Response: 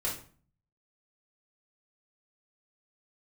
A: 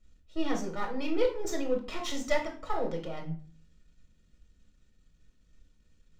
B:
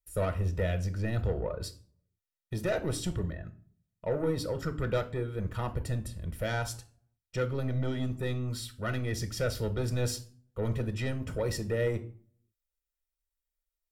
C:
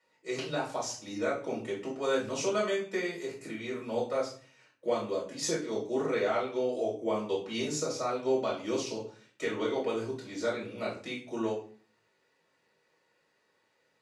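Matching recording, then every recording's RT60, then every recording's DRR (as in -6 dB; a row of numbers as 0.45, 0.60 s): C; 0.45, 0.45, 0.45 s; 1.0, 8.5, -6.0 dB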